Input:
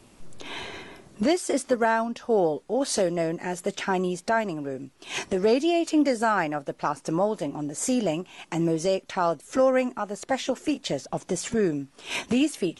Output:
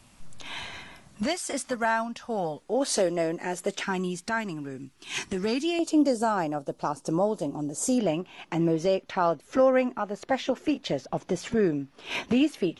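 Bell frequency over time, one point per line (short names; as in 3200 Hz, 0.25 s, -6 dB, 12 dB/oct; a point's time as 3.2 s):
bell -14 dB 0.93 oct
390 Hz
from 2.62 s 100 Hz
from 3.83 s 570 Hz
from 5.79 s 2000 Hz
from 7.98 s 8600 Hz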